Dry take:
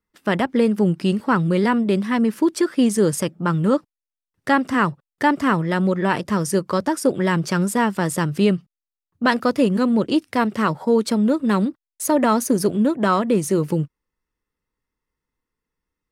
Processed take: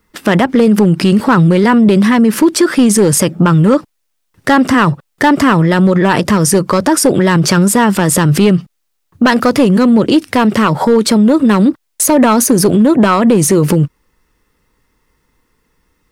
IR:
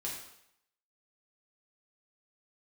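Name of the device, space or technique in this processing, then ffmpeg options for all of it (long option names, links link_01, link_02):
loud club master: -af "acompressor=threshold=-23dB:ratio=1.5,asoftclip=type=hard:threshold=-15dB,alimiter=level_in=24.5dB:limit=-1dB:release=50:level=0:latency=1,volume=-2dB"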